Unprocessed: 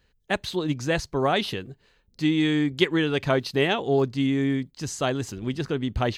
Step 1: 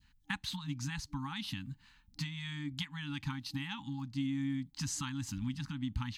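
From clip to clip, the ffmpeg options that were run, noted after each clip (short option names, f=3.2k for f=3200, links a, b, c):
-af "acompressor=threshold=-32dB:ratio=6,adynamicequalizer=threshold=0.00251:dfrequency=1500:dqfactor=0.72:tfrequency=1500:tqfactor=0.72:attack=5:release=100:ratio=0.375:range=2.5:mode=cutabove:tftype=bell,afftfilt=real='re*(1-between(b*sr/4096,300,800))':imag='im*(1-between(b*sr/4096,300,800))':win_size=4096:overlap=0.75"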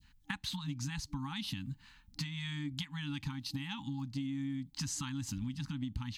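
-af "adynamicequalizer=threshold=0.00141:dfrequency=1500:dqfactor=0.91:tfrequency=1500:tqfactor=0.91:attack=5:release=100:ratio=0.375:range=2.5:mode=cutabove:tftype=bell,acompressor=threshold=-38dB:ratio=6,volume=3.5dB"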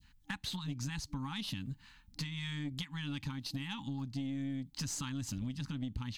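-af "aeval=exprs='(tanh(31.6*val(0)+0.3)-tanh(0.3))/31.6':c=same,volume=1dB"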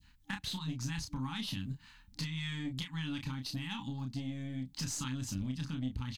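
-filter_complex "[0:a]asplit=2[a][b];[b]adelay=31,volume=-5.5dB[c];[a][c]amix=inputs=2:normalize=0"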